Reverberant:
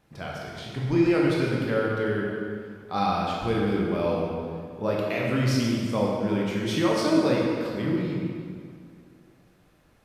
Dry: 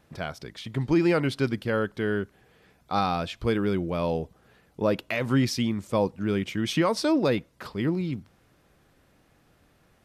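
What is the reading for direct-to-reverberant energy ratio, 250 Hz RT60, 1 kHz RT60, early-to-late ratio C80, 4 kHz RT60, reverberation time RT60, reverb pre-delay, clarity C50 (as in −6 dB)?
−4.0 dB, 2.3 s, 2.2 s, 0.5 dB, 1.7 s, 2.2 s, 12 ms, −1.0 dB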